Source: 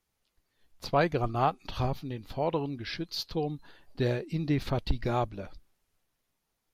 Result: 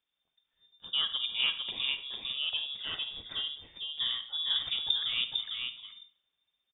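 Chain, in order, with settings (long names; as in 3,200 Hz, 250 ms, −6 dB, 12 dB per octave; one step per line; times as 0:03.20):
gain on a spectral selection 0:00.79–0:01.25, 790–1,800 Hz −14 dB
on a send: single-tap delay 452 ms −4 dB
on the sum: four-comb reverb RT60 0.55 s, DRR 11 dB
voice inversion scrambler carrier 3,600 Hz
level −5.5 dB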